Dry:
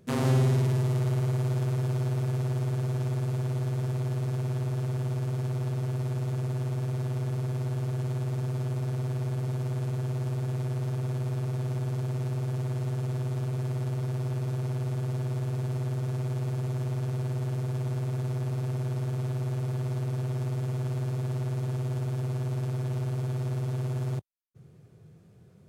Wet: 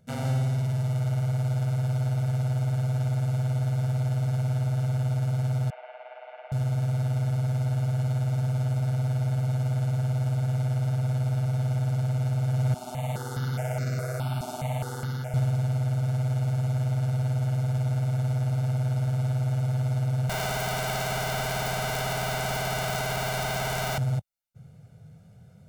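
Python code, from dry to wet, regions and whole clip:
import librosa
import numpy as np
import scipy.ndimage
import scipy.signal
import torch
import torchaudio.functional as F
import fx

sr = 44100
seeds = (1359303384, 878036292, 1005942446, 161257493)

y = fx.chain(x, sr, fx.ellip_bandpass(low_hz=610.0, high_hz=2700.0, order=3, stop_db=60),
    fx.peak_eq(hz=1300.0, db=-7.5, octaves=0.22), at=(5.7, 6.52))
y = fx.chain(y, sr, fx.highpass(hz=250.0, slope=12),
    fx.phaser_held(hz=4.8, low_hz=500.0, high_hz=3200.0), at=(12.74, 15.34))
y = fx.chain(y, sr, fx.highpass(hz=47.0, slope=12),
    fx.low_shelf(hz=460.0, db=4.5),
    fx.overflow_wrap(gain_db=27.0), at=(20.29, 23.98))
y = fx.rider(y, sr, range_db=10, speed_s=0.5)
y = y + 0.81 * np.pad(y, (int(1.4 * sr / 1000.0), 0))[:len(y)]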